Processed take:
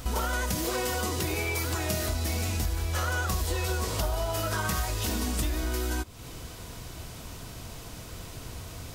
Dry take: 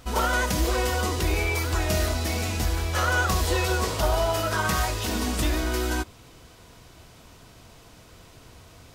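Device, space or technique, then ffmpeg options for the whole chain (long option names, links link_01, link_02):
ASMR close-microphone chain: -filter_complex "[0:a]asettb=1/sr,asplit=3[link_01][link_02][link_03];[link_01]atrim=end=0.554[link_04];[link_02]atrim=start=0.55:end=2.09,asetpts=PTS-STARTPTS,afade=type=in:duration=0.004:curve=qsin,afade=type=out:start_time=1.536:duration=0.004:curve=qsin,highpass=frequency=91:width=0.5412,highpass=frequency=91:width=1.3066[link_05];[link_03]atrim=start=2.086[link_06];[link_04][link_05]acrossfade=duration=0.004:curve1=hsin:curve2=qsin[link_07];[link_07][link_06]acrossfade=duration=0.004:curve1=qsin:curve2=hsin,lowshelf=frequency=200:gain=5.5,acompressor=threshold=-34dB:ratio=4,highshelf=frequency=6900:gain=8,volume=5dB"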